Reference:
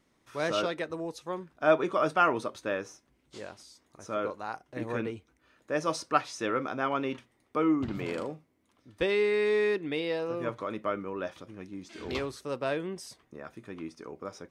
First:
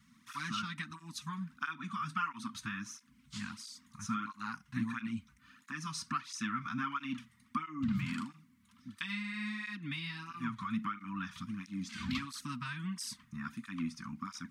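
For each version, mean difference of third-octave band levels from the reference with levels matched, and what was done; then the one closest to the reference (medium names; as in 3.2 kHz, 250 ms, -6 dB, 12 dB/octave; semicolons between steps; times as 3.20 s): 10.5 dB: compression 5:1, threshold -36 dBFS, peak gain reduction 17 dB; elliptic band-stop 230–1100 Hz, stop band 50 dB; peaking EQ 250 Hz +7.5 dB 0.81 oct; cancelling through-zero flanger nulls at 1.5 Hz, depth 4 ms; trim +8 dB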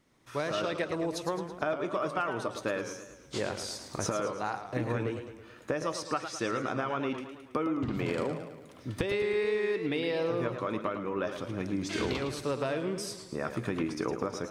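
7.5 dB: recorder AGC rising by 13 dB/s; peaking EQ 120 Hz +5.5 dB 0.42 oct; compression, threshold -28 dBFS, peak gain reduction 11 dB; modulated delay 109 ms, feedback 55%, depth 120 cents, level -9 dB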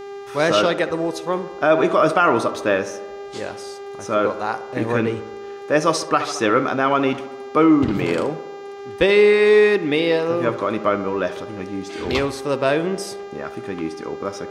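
3.0 dB: mains buzz 400 Hz, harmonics 18, -47 dBFS -9 dB/octave; on a send: tape echo 71 ms, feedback 75%, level -13.5 dB, low-pass 2.1 kHz; on the sum: loudness maximiser +17 dB; trim -4.5 dB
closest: third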